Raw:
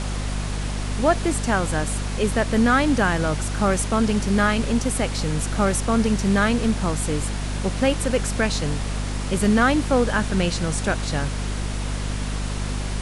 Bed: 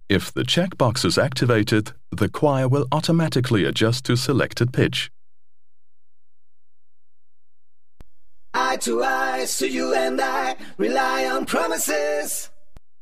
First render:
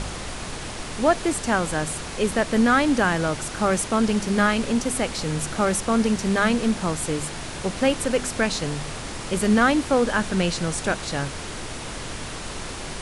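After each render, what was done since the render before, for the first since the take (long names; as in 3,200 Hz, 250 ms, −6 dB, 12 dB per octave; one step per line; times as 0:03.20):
hum removal 50 Hz, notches 5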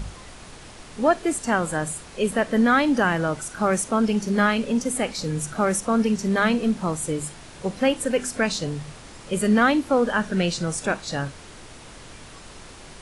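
noise reduction from a noise print 10 dB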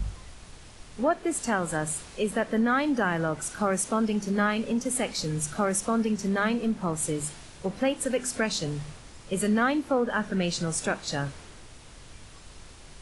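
downward compressor 2 to 1, threshold −26 dBFS, peak gain reduction 7.5 dB
multiband upward and downward expander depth 40%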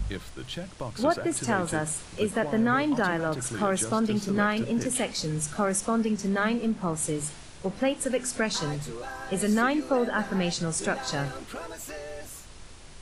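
mix in bed −17 dB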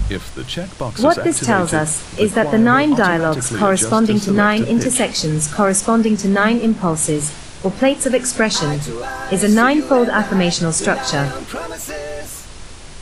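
level +11.5 dB
brickwall limiter −1 dBFS, peak gain reduction 2 dB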